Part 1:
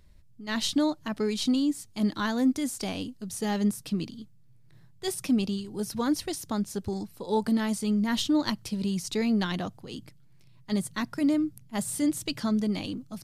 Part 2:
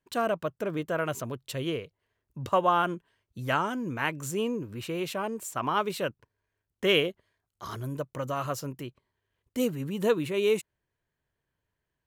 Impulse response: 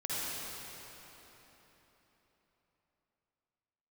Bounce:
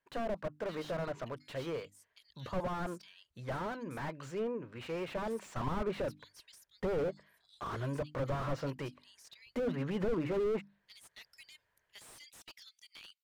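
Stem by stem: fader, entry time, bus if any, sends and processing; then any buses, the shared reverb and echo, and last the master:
−13.5 dB, 0.20 s, no send, reverb reduction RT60 0.93 s; Butterworth high-pass 2,100 Hz 36 dB per octave; high-shelf EQ 12,000 Hz +6.5 dB; automatic ducking −9 dB, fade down 1.30 s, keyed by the second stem
0:04.92 −9.5 dB → 0:05.67 −2.5 dB, 0.00 s, no send, treble cut that deepens with the level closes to 1,400 Hz, closed at −24.5 dBFS; flat-topped bell 1,000 Hz +8 dB 2.4 octaves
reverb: not used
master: parametric band 3,100 Hz +6.5 dB 2 octaves; mains-hum notches 50/100/150/200/250/300 Hz; slew-rate limiting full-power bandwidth 13 Hz

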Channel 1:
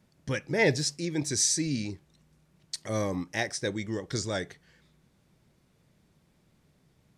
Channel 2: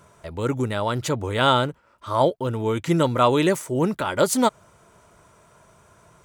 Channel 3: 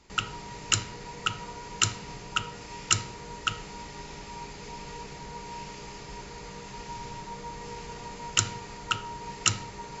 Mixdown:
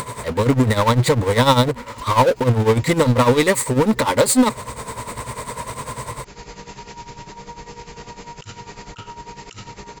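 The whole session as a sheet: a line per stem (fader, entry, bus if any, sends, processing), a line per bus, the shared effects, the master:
−5.5 dB, 0.00 s, bus A, no send, three sine waves on the formant tracks
−1.5 dB, 0.00 s, no bus, no send, EQ curve with evenly spaced ripples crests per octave 0.98, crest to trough 13 dB; automatic gain control gain up to 4 dB; power curve on the samples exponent 0.5
−1.0 dB, 0.05 s, bus A, no send, no processing
bus A: 0.0 dB, compressor whose output falls as the input rises −35 dBFS, ratio −1; brickwall limiter −30.5 dBFS, peak gain reduction 8 dB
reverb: not used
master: upward compression, threshold −25 dBFS; amplitude tremolo 10 Hz, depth 75%

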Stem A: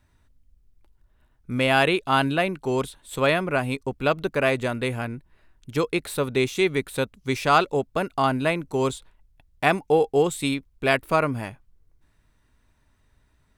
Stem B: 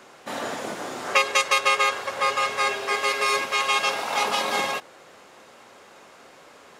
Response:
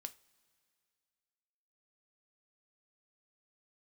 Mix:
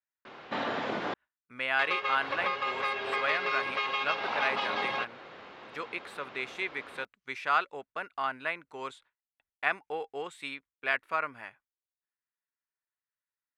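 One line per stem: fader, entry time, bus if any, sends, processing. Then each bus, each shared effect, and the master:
−3.5 dB, 0.00 s, no send, resonant band-pass 1,700 Hz, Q 1.5
+2.0 dB, 0.25 s, muted 0:01.14–0:01.79, no send, low-pass filter 3,900 Hz 24 dB per octave; parametric band 580 Hz −2.5 dB; downward compressor 12 to 1, threshold −30 dBFS, peak gain reduction 15.5 dB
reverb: not used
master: noise gate with hold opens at −49 dBFS

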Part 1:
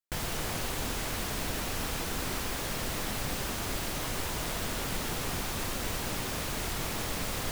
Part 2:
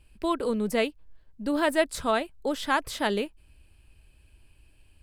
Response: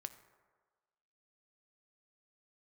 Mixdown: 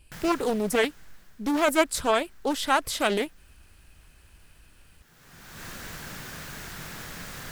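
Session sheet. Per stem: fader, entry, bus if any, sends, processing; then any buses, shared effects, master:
−9.5 dB, 0.00 s, no send, graphic EQ with 15 bands 160 Hz +8 dB, 1,600 Hz +10 dB, 10,000 Hz −4 dB; automatic ducking −23 dB, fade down 1.40 s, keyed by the second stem
+1.5 dB, 0.00 s, no send, no processing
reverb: not used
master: high-shelf EQ 4,700 Hz +8.5 dB; highs frequency-modulated by the lows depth 0.42 ms

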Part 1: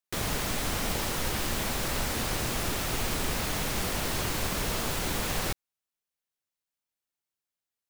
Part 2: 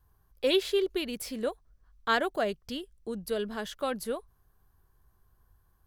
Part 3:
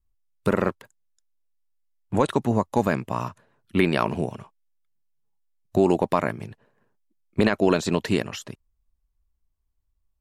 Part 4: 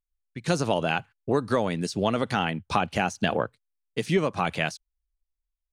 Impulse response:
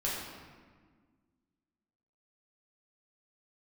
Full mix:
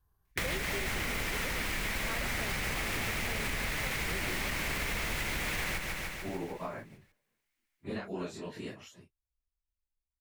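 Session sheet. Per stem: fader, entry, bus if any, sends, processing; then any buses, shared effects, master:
+2.0 dB, 0.25 s, no send, echo send −7 dB, sub-octave generator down 2 octaves, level +2 dB; parametric band 2,100 Hz +13 dB 0.82 octaves; brickwall limiter −18.5 dBFS, peak gain reduction 5 dB
−7.5 dB, 0.00 s, no send, no echo send, no processing
−17.0 dB, 0.50 s, no send, no echo send, random phases in long frames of 100 ms
−15.0 dB, 0.00 s, no send, no echo send, no processing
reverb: not used
echo: repeating echo 149 ms, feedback 59%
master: downward compressor 6 to 1, threshold −31 dBFS, peak gain reduction 10 dB

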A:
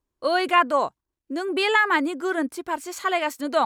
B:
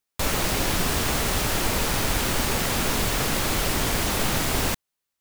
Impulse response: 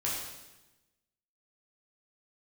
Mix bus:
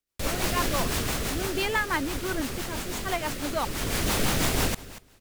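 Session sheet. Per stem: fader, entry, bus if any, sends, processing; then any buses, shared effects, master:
−14.0 dB, 0.00 s, no send, no echo send, no processing
−1.0 dB, 0.00 s, no send, echo send −24 dB, automatic ducking −17 dB, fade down 1.75 s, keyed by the first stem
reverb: not used
echo: repeating echo 238 ms, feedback 16%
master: automatic gain control gain up to 10 dB; rotating-speaker cabinet horn 6 Hz; downward compressor 6 to 1, threshold −21 dBFS, peak gain reduction 8 dB

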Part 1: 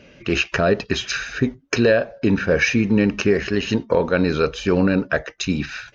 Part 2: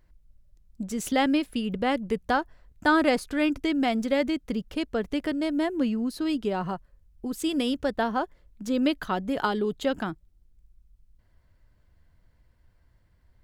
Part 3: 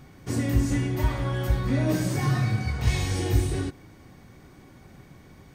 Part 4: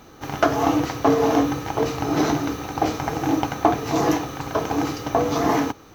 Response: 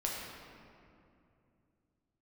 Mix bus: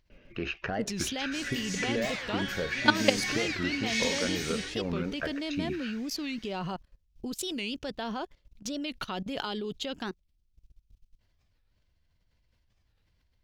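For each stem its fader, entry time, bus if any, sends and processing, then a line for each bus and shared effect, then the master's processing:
−11.0 dB, 0.10 s, no send, low-pass filter 3,600 Hz 12 dB per octave; downward compressor 3 to 1, threshold −19 dBFS, peak gain reduction 6 dB
+2.0 dB, 0.00 s, no send, flat-topped bell 3,900 Hz +10 dB; output level in coarse steps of 18 dB
−13.5 dB, 1.05 s, no send, high-pass filter 890 Hz 6 dB per octave; flat-topped bell 3,300 Hz +13 dB 2.4 octaves; automatic gain control gain up to 6 dB
muted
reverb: not used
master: wow of a warped record 45 rpm, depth 250 cents

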